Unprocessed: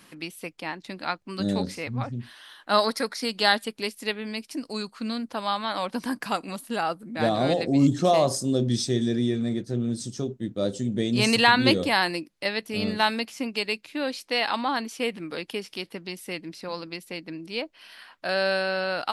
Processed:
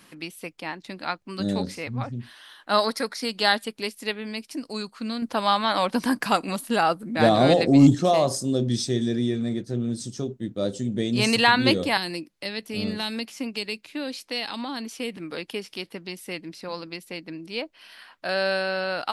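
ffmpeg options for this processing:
ffmpeg -i in.wav -filter_complex "[0:a]asettb=1/sr,asplit=3[link_01][link_02][link_03];[link_01]atrim=end=5.224[link_04];[link_02]atrim=start=5.22:end=7.95,asetpts=PTS-STARTPTS,afade=type=in:duration=0.004:curve=qsin,afade=type=out:start_time=2.726:duration=0.004:curve=qsin,acontrast=48[link_05];[link_03]atrim=start=7.946[link_06];[link_04][link_05]acrossfade=duration=0.004:curve1=hsin:curve2=qsin[link_07];[link_07][link_06]acrossfade=duration=0.004:curve1=qsin:curve2=hsin,asettb=1/sr,asplit=3[link_08][link_09][link_10];[link_08]atrim=end=11.974[link_11];[link_09]atrim=start=11.97:end=15.17,asetpts=PTS-STARTPTS,afade=type=in:duration=0.004:curve=qsin,afade=type=out:start_time=3.196:duration=0.004:curve=qsin,acrossover=split=380|3000[link_12][link_13][link_14];[link_13]acompressor=threshold=-35dB:ratio=4:attack=3.2:release=140:knee=2.83:detection=peak[link_15];[link_12][link_15][link_14]amix=inputs=3:normalize=0[link_16];[link_10]atrim=start=15.166[link_17];[link_11][link_16]acrossfade=duration=0.004:curve1=hsin:curve2=qsin[link_18];[link_18][link_17]acrossfade=duration=0.004:curve1=qsin:curve2=hsin" out.wav

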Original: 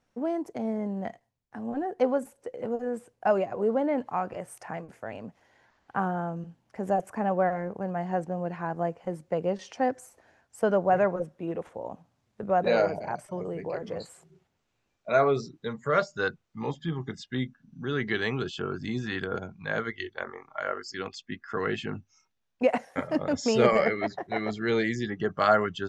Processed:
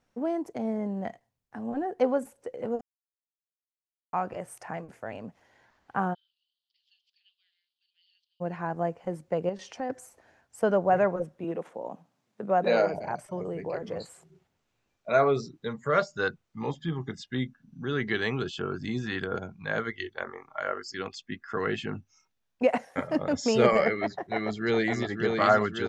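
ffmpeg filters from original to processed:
ffmpeg -i in.wav -filter_complex "[0:a]asplit=3[link_01][link_02][link_03];[link_01]afade=type=out:start_time=6.13:duration=0.02[link_04];[link_02]asuperpass=centerf=3800:order=8:qfactor=2.1,afade=type=in:start_time=6.13:duration=0.02,afade=type=out:start_time=8.4:duration=0.02[link_05];[link_03]afade=type=in:start_time=8.4:duration=0.02[link_06];[link_04][link_05][link_06]amix=inputs=3:normalize=0,asettb=1/sr,asplit=3[link_07][link_08][link_09];[link_07]atrim=end=9.494[link_10];[link_08]atrim=start=9.49:end=9.9,asetpts=PTS-STARTPTS,afade=type=in:duration=0.004:curve=qsin,afade=type=out:start_time=0.406:duration=0.004:curve=qsin,acompressor=threshold=-34dB:ratio=2:attack=3.2:release=140:knee=1:detection=peak[link_11];[link_09]atrim=start=9.896[link_12];[link_10][link_11]acrossfade=duration=0.004:curve1=hsin:curve2=qsin[link_13];[link_13][link_12]acrossfade=duration=0.004:curve1=qsin:curve2=hsin,asettb=1/sr,asplit=3[link_14][link_15][link_16];[link_14]atrim=end=11.444[link_17];[link_15]atrim=start=11.44:end=12.94,asetpts=PTS-STARTPTS,afade=type=in:duration=0.004:curve=qsin,afade=type=out:start_time=1.496:duration=0.004:curve=qsin,highpass=frequency=150:width=0.5412,highpass=frequency=150:width=1.3066[link_18];[link_16]atrim=start=12.936[link_19];[link_17][link_18]acrossfade=duration=0.004:curve1=hsin:curve2=qsin[link_20];[link_20][link_19]acrossfade=duration=0.004:curve1=qsin:curve2=hsin,asplit=2[link_21][link_22];[link_22]afade=type=in:start_time=24.1:duration=0.01,afade=type=out:start_time=25.02:duration=0.01,aecho=0:1:560|1120|1680|2240|2800|3360|3920|4480|5040|5600|6160|6720:0.630957|0.44167|0.309169|0.216418|0.151493|0.106045|0.0742315|0.0519621|0.0363734|0.0254614|0.017823|0.0124761[link_23];[link_21][link_23]amix=inputs=2:normalize=0,asplit=3[link_24][link_25][link_26];[link_24]atrim=end=2.81,asetpts=PTS-STARTPTS,afade=type=out:start_time=2.806:duration=0.004:curve=hsin[link_27];[link_25]atrim=start=2.81:end=4.13,asetpts=PTS-STARTPTS,volume=0[link_28];[link_26]atrim=start=4.13,asetpts=PTS-STARTPTS,afade=type=in:duration=0.004:curve=hsin[link_29];[link_27][link_28][link_29]concat=n=3:v=0:a=1" out.wav

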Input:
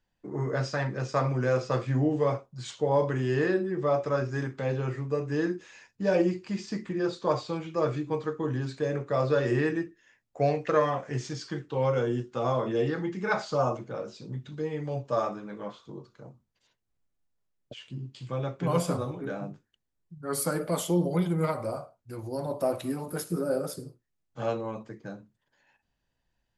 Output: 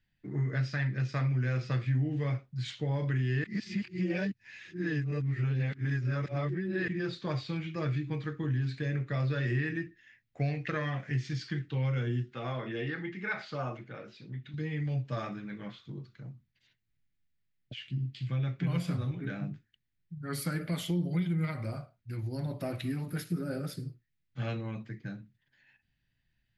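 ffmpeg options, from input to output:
ffmpeg -i in.wav -filter_complex "[0:a]asettb=1/sr,asplit=3[link_01][link_02][link_03];[link_01]atrim=end=12.334[link_04];[link_02]atrim=start=12.33:end=14.54,asetpts=PTS-STARTPTS,afade=type=in:duration=0.004:curve=qsin,afade=type=out:start_time=2.206:duration=0.004:curve=qsin,bass=frequency=250:gain=-11,treble=frequency=4000:gain=-9[link_05];[link_03]atrim=start=14.536[link_06];[link_04][link_05]acrossfade=duration=0.004:curve1=hsin:curve2=qsin[link_07];[link_07][link_06]acrossfade=duration=0.004:curve1=qsin:curve2=hsin,asplit=3[link_08][link_09][link_10];[link_08]atrim=end=3.442[link_11];[link_09]atrim=start=3.438:end=6.882,asetpts=PTS-STARTPTS,areverse[link_12];[link_10]atrim=start=6.878[link_13];[link_11][link_12]acrossfade=duration=0.004:curve1=hsin:curve2=hsin[link_14];[link_14][link_13]acrossfade=duration=0.004:curve1=hsin:curve2=hsin,equalizer=frequency=125:width_type=o:width=1:gain=7,equalizer=frequency=500:width_type=o:width=1:gain=-10,equalizer=frequency=1000:width_type=o:width=1:gain=-11,equalizer=frequency=2000:width_type=o:width=1:gain=10,equalizer=frequency=4000:width_type=o:width=1:gain=6,equalizer=frequency=8000:width_type=o:width=1:gain=-6,acompressor=threshold=-29dB:ratio=2.5,equalizer=frequency=7100:width=0.32:gain=-6" out.wav

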